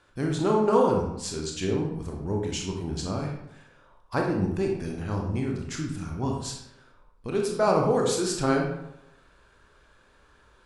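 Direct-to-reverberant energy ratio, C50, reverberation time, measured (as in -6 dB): 0.0 dB, 3.5 dB, 0.85 s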